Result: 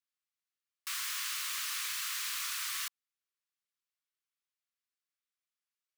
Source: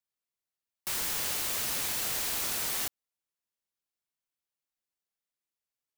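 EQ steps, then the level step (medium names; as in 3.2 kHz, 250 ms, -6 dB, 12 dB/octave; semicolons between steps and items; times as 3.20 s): elliptic high-pass 1.1 kHz, stop band 40 dB; treble shelf 8.6 kHz -8 dB; 0.0 dB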